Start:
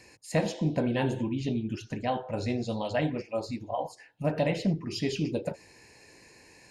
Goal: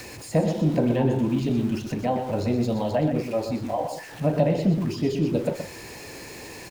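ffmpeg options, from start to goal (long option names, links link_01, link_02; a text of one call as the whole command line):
ffmpeg -i in.wav -filter_complex "[0:a]aeval=exprs='val(0)+0.5*0.0106*sgn(val(0))':channel_layout=same,acrossover=split=370|870[link_01][link_02][link_03];[link_03]acompressor=threshold=-45dB:ratio=6[link_04];[link_01][link_02][link_04]amix=inputs=3:normalize=0,asplit=2[link_05][link_06];[link_06]adelay=122.4,volume=-7dB,highshelf=frequency=4000:gain=-2.76[link_07];[link_05][link_07]amix=inputs=2:normalize=0,volume=5dB" out.wav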